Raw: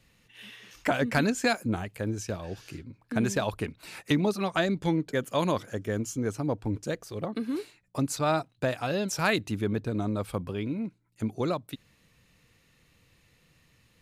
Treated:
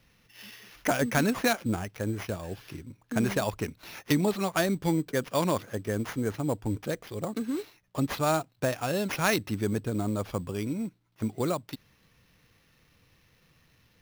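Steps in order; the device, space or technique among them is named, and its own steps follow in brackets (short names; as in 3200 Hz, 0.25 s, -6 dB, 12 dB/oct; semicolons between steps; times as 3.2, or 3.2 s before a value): early companding sampler (sample-rate reducer 8100 Hz, jitter 0%; companded quantiser 8-bit)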